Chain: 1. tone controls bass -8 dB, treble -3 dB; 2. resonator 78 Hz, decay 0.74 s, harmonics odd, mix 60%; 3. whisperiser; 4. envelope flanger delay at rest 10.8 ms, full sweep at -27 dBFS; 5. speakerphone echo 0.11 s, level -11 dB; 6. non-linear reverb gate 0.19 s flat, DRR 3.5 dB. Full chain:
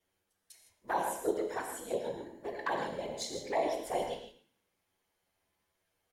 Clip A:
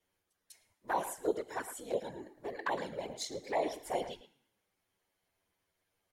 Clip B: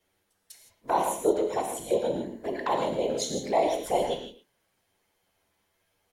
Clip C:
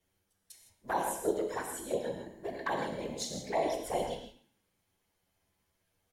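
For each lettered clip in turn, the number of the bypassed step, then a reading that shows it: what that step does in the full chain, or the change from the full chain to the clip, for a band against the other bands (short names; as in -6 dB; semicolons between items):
6, crest factor change +2.0 dB; 2, 2 kHz band -8.0 dB; 1, 125 Hz band +4.5 dB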